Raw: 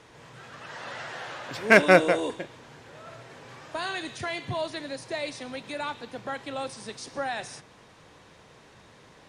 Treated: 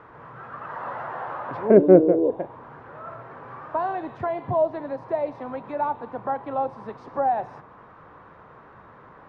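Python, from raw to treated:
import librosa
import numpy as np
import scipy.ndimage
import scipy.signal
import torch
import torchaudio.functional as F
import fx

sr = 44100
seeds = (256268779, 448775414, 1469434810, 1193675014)

y = fx.envelope_lowpass(x, sr, base_hz=390.0, top_hz=1300.0, q=2.7, full_db=-19.5, direction='down')
y = y * librosa.db_to_amplitude(3.0)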